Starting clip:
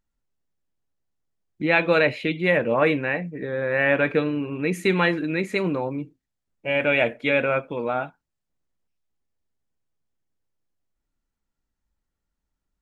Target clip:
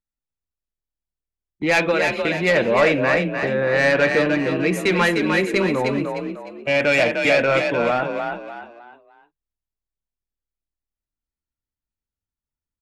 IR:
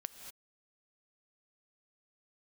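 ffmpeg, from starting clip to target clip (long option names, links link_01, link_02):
-filter_complex "[0:a]agate=range=-19dB:threshold=-31dB:ratio=16:detection=peak,acrossover=split=420|5600[link_01][link_02][link_03];[link_01]alimiter=limit=-24dB:level=0:latency=1[link_04];[link_04][link_02][link_03]amix=inputs=3:normalize=0,asettb=1/sr,asplit=3[link_05][link_06][link_07];[link_05]atrim=end=1.914[link_08];[link_06]atrim=start=1.91:end=2.45,asetpts=PTS-STARTPTS,afade=type=in:duration=0.004:curve=qsin,afade=type=out:start_time=0.536:duration=0.004:curve=qsin,acompressor=threshold=-24dB:ratio=6[link_09];[link_07]atrim=start=2.446[link_10];[link_08][link_09]acrossfade=duration=0.004:curve1=hsin:curve2=qsin[link_11];[link_11][link_10]acrossfade=duration=0.004:curve1=qsin:curve2=hsin,asoftclip=type=tanh:threshold=-17dB,asplit=5[link_12][link_13][link_14][link_15][link_16];[link_13]adelay=303,afreqshift=38,volume=-5dB[link_17];[link_14]adelay=606,afreqshift=76,volume=-14.1dB[link_18];[link_15]adelay=909,afreqshift=114,volume=-23.2dB[link_19];[link_16]adelay=1212,afreqshift=152,volume=-32.4dB[link_20];[link_12][link_17][link_18][link_19][link_20]amix=inputs=5:normalize=0,volume=6dB"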